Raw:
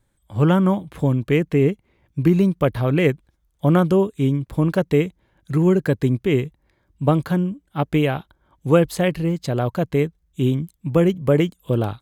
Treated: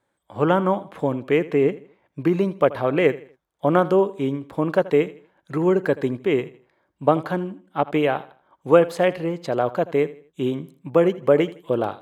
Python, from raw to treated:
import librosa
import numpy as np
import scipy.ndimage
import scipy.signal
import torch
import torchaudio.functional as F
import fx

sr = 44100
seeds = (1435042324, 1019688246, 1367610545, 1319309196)

y = scipy.signal.sosfilt(scipy.signal.butter(2, 640.0, 'highpass', fs=sr, output='sos'), x)
y = fx.tilt_eq(y, sr, slope=-4.0)
y = fx.echo_feedback(y, sr, ms=81, feedback_pct=34, wet_db=-18.0)
y = y * 10.0 ** (4.0 / 20.0)